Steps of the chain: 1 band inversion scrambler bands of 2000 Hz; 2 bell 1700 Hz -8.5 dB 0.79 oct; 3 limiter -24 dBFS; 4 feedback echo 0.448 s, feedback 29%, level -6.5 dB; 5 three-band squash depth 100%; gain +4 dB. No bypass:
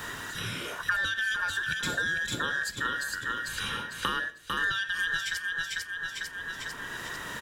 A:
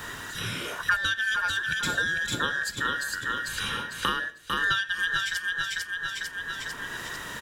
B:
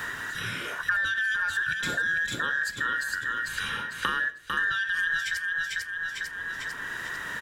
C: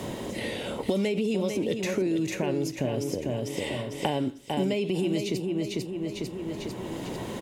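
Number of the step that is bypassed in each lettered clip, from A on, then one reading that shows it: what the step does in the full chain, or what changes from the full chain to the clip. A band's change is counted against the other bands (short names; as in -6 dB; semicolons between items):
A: 3, loudness change +2.5 LU; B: 2, 2 kHz band +5.0 dB; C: 1, 500 Hz band +19.5 dB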